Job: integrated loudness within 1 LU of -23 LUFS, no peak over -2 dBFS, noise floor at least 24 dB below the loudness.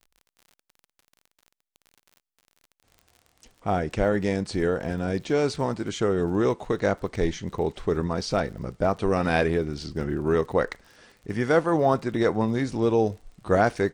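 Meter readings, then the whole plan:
ticks 43/s; loudness -25.5 LUFS; peak -8.0 dBFS; loudness target -23.0 LUFS
-> de-click; gain +2.5 dB

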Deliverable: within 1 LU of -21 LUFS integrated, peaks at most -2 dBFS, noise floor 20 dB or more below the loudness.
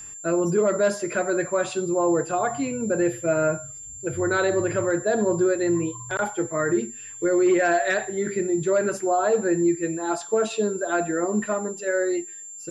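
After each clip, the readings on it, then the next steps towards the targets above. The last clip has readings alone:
ticks 30/s; steady tone 7300 Hz; tone level -37 dBFS; loudness -24.0 LUFS; peak -12.5 dBFS; loudness target -21.0 LUFS
-> de-click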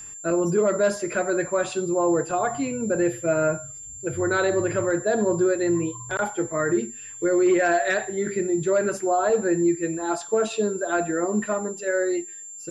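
ticks 0.079/s; steady tone 7300 Hz; tone level -37 dBFS
-> notch 7300 Hz, Q 30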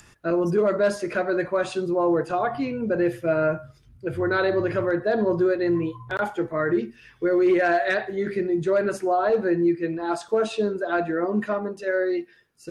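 steady tone none; loudness -24.0 LUFS; peak -12.5 dBFS; loudness target -21.0 LUFS
-> gain +3 dB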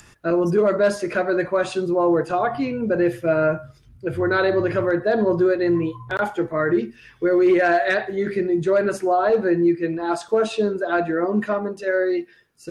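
loudness -21.0 LUFS; peak -9.5 dBFS; noise floor -51 dBFS

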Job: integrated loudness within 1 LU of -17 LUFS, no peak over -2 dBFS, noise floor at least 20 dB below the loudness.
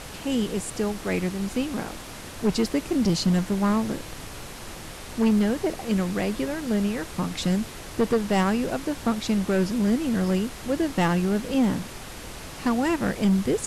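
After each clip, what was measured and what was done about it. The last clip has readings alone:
clipped 1.3%; flat tops at -16.0 dBFS; noise floor -40 dBFS; noise floor target -46 dBFS; loudness -25.5 LUFS; peak -16.0 dBFS; loudness target -17.0 LUFS
-> clip repair -16 dBFS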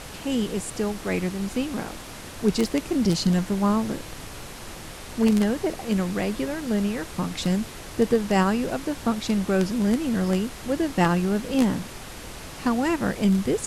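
clipped 0.0%; noise floor -40 dBFS; noise floor target -45 dBFS
-> noise print and reduce 6 dB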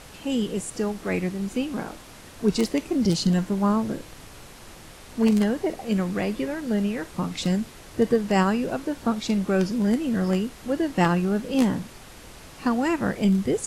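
noise floor -45 dBFS; loudness -25.0 LUFS; peak -7.0 dBFS; loudness target -17.0 LUFS
-> gain +8 dB; limiter -2 dBFS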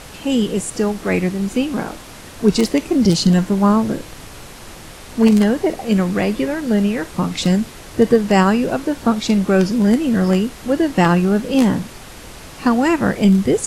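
loudness -17.0 LUFS; peak -2.0 dBFS; noise floor -37 dBFS

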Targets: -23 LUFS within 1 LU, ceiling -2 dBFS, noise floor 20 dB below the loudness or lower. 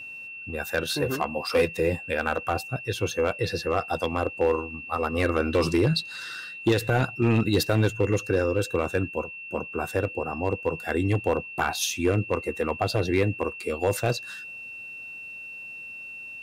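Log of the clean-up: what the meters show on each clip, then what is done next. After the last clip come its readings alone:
clipped 0.5%; flat tops at -14.5 dBFS; steady tone 2700 Hz; tone level -37 dBFS; loudness -26.5 LUFS; peak -14.5 dBFS; loudness target -23.0 LUFS
-> clip repair -14.5 dBFS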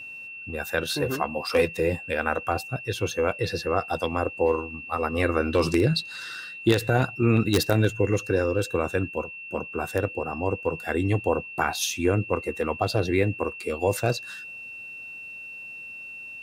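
clipped 0.0%; steady tone 2700 Hz; tone level -37 dBFS
-> notch 2700 Hz, Q 30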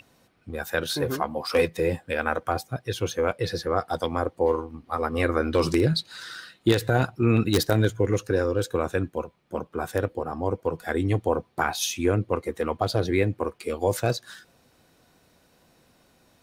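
steady tone none; loudness -26.0 LUFS; peak -5.5 dBFS; loudness target -23.0 LUFS
-> gain +3 dB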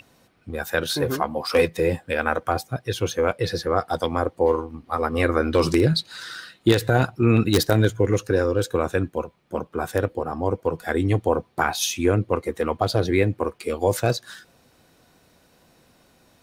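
loudness -23.0 LUFS; peak -2.5 dBFS; noise floor -60 dBFS

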